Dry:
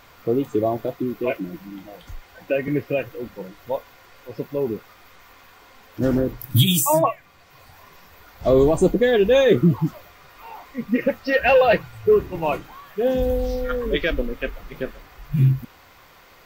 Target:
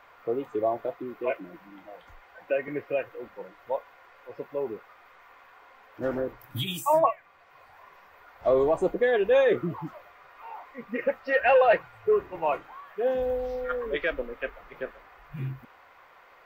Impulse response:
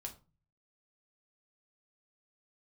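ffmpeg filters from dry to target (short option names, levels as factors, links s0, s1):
-filter_complex "[0:a]acrossover=split=450 2400:gain=0.158 1 0.141[s0][s1][s2];[s0][s1][s2]amix=inputs=3:normalize=0,volume=0.841"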